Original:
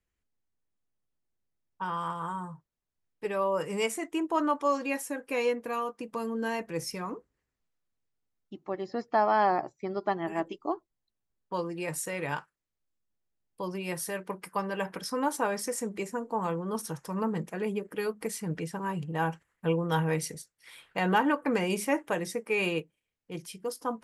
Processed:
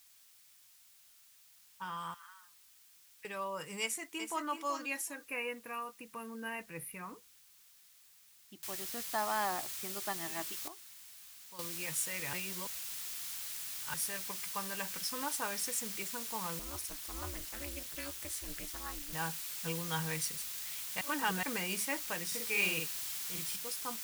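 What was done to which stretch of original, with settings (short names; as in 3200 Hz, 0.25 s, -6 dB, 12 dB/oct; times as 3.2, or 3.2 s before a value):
2.14–3.25 Butterworth band-pass 2100 Hz, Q 1.6
3.81–4.47 echo throw 0.38 s, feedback 15%, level -7.5 dB
5.15–7.11 brick-wall FIR band-stop 3000–9100 Hz
8.63 noise floor step -62 dB -42 dB
10.68–11.59 gain -11.5 dB
12.33–13.94 reverse
16.59–19.13 ring modulator 140 Hz
21.01–21.43 reverse
22.27–23.56 doubler 49 ms -2 dB
whole clip: passive tone stack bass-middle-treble 5-5-5; gain +6 dB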